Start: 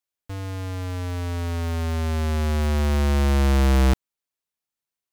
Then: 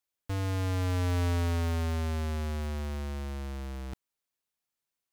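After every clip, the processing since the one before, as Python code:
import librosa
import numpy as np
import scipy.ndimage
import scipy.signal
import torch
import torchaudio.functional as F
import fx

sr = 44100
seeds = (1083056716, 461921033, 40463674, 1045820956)

y = fx.over_compress(x, sr, threshold_db=-27.0, ratio=-1.0)
y = y * 10.0 ** (-4.5 / 20.0)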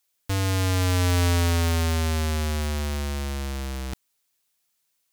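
y = fx.high_shelf(x, sr, hz=2300.0, db=9.0)
y = y * 10.0 ** (6.5 / 20.0)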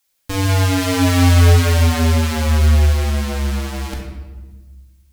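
y = fx.room_shoebox(x, sr, seeds[0], volume_m3=850.0, walls='mixed', distance_m=2.2)
y = y * 10.0 ** (3.0 / 20.0)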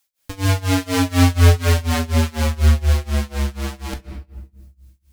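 y = x * (1.0 - 0.94 / 2.0 + 0.94 / 2.0 * np.cos(2.0 * np.pi * 4.1 * (np.arange(len(x)) / sr)))
y = y * 10.0 ** (1.0 / 20.0)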